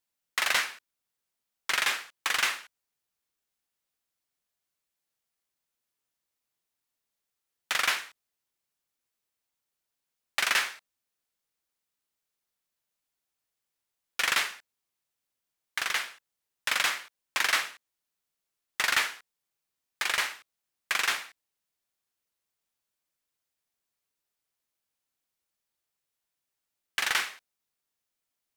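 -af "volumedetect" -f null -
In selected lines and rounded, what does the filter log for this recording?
mean_volume: -36.2 dB
max_volume: -11.8 dB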